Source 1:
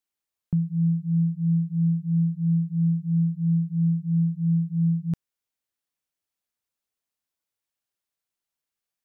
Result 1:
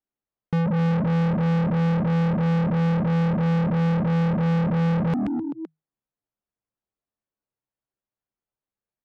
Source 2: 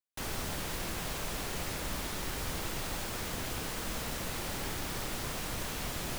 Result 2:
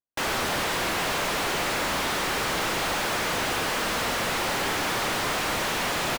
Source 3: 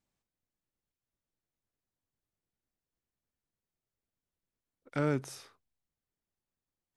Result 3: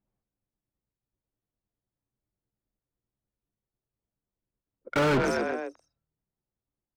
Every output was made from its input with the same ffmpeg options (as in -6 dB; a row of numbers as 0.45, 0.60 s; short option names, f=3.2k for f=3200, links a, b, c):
-filter_complex "[0:a]anlmdn=0.251,asplit=5[a][b][c][d][e];[b]adelay=128,afreqshift=39,volume=-20dB[f];[c]adelay=256,afreqshift=78,volume=-25.2dB[g];[d]adelay=384,afreqshift=117,volume=-30.4dB[h];[e]adelay=512,afreqshift=156,volume=-35.6dB[i];[a][f][g][h][i]amix=inputs=5:normalize=0,asplit=2[j][k];[k]highpass=f=720:p=1,volume=42dB,asoftclip=type=tanh:threshold=-16dB[l];[j][l]amix=inputs=2:normalize=0,lowpass=f=2.2k:p=1,volume=-6dB"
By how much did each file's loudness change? +2.0, +11.0, +6.5 LU